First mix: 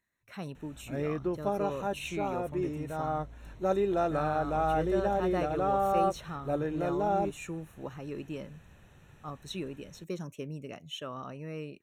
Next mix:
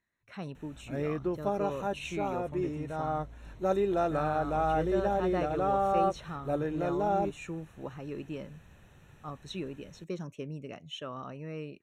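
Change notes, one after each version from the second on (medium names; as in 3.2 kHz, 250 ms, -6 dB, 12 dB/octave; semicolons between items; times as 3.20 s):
speech: add distance through air 59 m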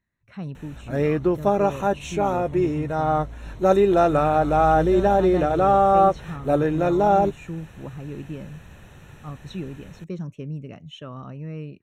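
speech: add tone controls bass +11 dB, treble -3 dB; background +11.0 dB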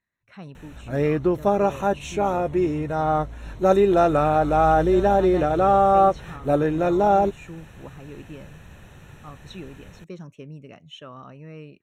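speech: add bass shelf 290 Hz -11 dB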